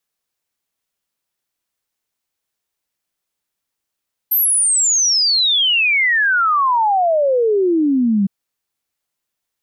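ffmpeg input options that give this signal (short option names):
-f lavfi -i "aevalsrc='0.251*clip(min(t,3.96-t)/0.01,0,1)*sin(2*PI*13000*3.96/log(190/13000)*(exp(log(190/13000)*t/3.96)-1))':d=3.96:s=44100"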